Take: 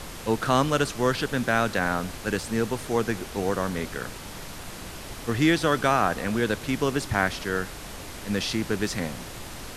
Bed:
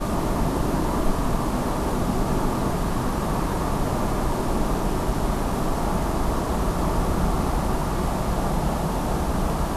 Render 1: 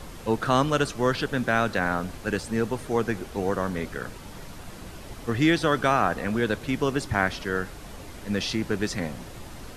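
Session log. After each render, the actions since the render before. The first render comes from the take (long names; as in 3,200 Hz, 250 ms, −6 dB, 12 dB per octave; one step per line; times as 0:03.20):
broadband denoise 7 dB, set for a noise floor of −39 dBFS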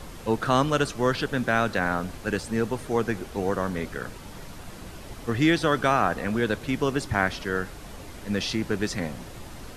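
no processing that can be heard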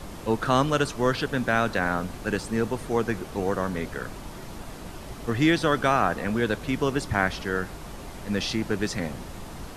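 mix in bed −19.5 dB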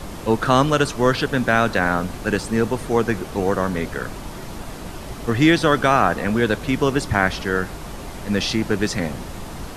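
level +6 dB
brickwall limiter −3 dBFS, peak gain reduction 1.5 dB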